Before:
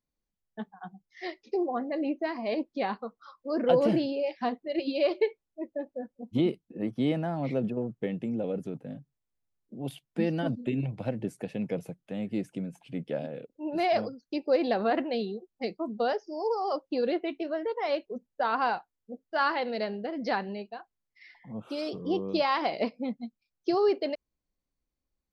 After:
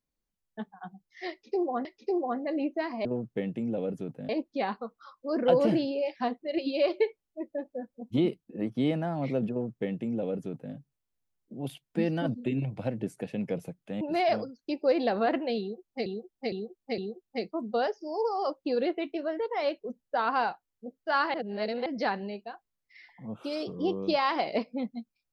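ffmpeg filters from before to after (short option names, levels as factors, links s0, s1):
-filter_complex "[0:a]asplit=10[s0][s1][s2][s3][s4][s5][s6][s7][s8][s9];[s0]atrim=end=1.852[s10];[s1]atrim=start=1.298:end=2.502[s11];[s2]atrim=start=7.708:end=8.952[s12];[s3]atrim=start=2.498:end=12.222[s13];[s4]atrim=start=13.648:end=15.702[s14];[s5]atrim=start=15.238:end=15.702[s15];[s6]atrim=start=15.238:end=15.702[s16];[s7]atrim=start=15.238:end=19.602[s17];[s8]atrim=start=19.598:end=20.122,asetpts=PTS-STARTPTS,areverse[s18];[s9]atrim=start=20.118[s19];[s10][s11]acrossfade=d=0.004:c1=hsin:c2=hsin[s20];[s20][s12]acrossfade=d=0.004:c1=hsin:c2=hsin[s21];[s21][s13]acrossfade=d=0.004:c1=hsin:c2=hsin[s22];[s22][s14]acrossfade=d=0.004:c1=hsin:c2=hsin[s23];[s23][s15]acrossfade=d=0.004:c1=hsin:c2=hsin[s24];[s24][s16]acrossfade=d=0.004:c1=hsin:c2=hsin[s25];[s25][s17]acrossfade=d=0.004:c1=hsin:c2=hsin[s26];[s26][s18]acrossfade=d=0.004:c1=hsin:c2=hsin[s27];[s27][s19]acrossfade=d=0.004:c1=hsin:c2=hsin"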